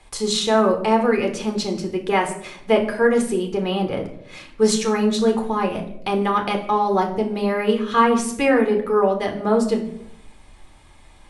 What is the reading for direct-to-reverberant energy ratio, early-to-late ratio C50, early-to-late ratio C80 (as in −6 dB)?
2.5 dB, 9.5 dB, 13.5 dB